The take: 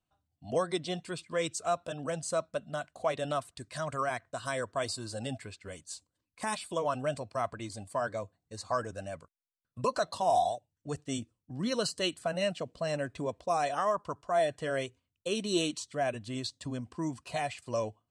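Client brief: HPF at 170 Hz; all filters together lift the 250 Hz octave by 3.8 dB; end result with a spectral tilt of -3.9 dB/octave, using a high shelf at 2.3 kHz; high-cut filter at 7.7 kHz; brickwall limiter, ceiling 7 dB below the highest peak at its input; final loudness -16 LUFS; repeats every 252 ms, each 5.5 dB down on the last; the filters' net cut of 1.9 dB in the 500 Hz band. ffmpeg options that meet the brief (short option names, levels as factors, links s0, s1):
-af "highpass=170,lowpass=7700,equalizer=f=250:t=o:g=7.5,equalizer=f=500:t=o:g=-4.5,highshelf=f=2300:g=3.5,alimiter=limit=0.0794:level=0:latency=1,aecho=1:1:252|504|756|1008|1260|1512|1764:0.531|0.281|0.149|0.079|0.0419|0.0222|0.0118,volume=7.94"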